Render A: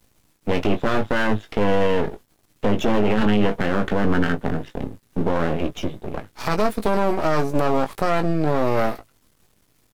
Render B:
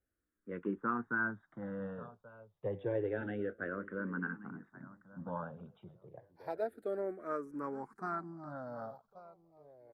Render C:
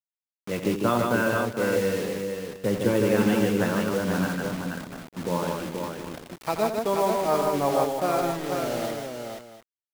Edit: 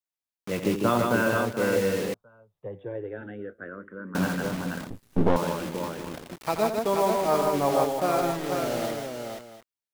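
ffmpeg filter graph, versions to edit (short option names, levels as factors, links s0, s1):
-filter_complex "[2:a]asplit=3[s0][s1][s2];[s0]atrim=end=2.142[s3];[1:a]atrim=start=2.138:end=4.152[s4];[s1]atrim=start=4.148:end=4.902[s5];[0:a]atrim=start=4.898:end=5.362[s6];[s2]atrim=start=5.358[s7];[s3][s4]acrossfade=d=0.004:c1=hsin:c2=hsin[s8];[s8][s5]acrossfade=d=0.004:c1=hsin:c2=hsin[s9];[s9][s6]acrossfade=d=0.004:c1=hsin:c2=hsin[s10];[s10][s7]acrossfade=d=0.004:c1=hsin:c2=hsin"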